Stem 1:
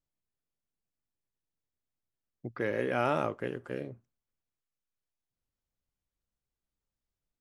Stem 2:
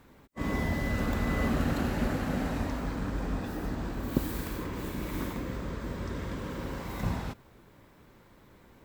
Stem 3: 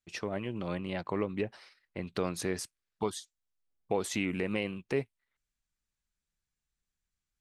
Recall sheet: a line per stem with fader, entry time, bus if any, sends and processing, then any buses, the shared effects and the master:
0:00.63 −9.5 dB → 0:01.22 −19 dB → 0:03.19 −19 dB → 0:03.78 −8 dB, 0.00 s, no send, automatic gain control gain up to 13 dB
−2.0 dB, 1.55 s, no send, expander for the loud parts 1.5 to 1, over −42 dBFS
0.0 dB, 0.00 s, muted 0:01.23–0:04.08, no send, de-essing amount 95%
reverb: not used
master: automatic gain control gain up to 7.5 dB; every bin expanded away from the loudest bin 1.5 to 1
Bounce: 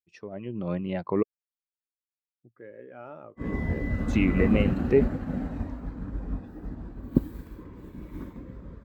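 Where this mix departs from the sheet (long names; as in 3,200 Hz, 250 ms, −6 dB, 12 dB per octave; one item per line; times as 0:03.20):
stem 1 −9.5 dB → −17.0 dB
stem 2: entry 1.55 s → 3.00 s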